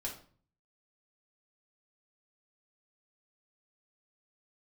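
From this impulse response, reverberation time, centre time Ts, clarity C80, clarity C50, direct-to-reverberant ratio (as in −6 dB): 0.45 s, 22 ms, 12.5 dB, 7.5 dB, −2.5 dB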